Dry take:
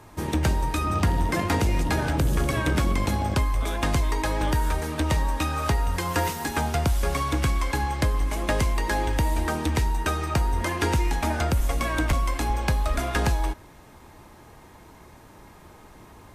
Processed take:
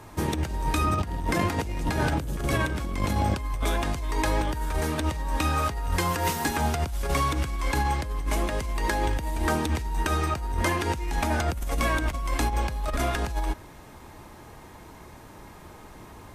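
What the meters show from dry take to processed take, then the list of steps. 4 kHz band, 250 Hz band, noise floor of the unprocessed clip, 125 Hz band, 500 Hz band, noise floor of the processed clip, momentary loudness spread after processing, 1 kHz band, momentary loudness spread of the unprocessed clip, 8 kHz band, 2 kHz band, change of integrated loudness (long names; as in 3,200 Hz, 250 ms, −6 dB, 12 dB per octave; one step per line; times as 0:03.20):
−1.5 dB, −2.0 dB, −49 dBFS, −3.0 dB, −1.0 dB, −47 dBFS, 21 LU, −0.5 dB, 3 LU, −1.5 dB, −1.0 dB, −2.0 dB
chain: compressor whose output falls as the input rises −25 dBFS, ratio −0.5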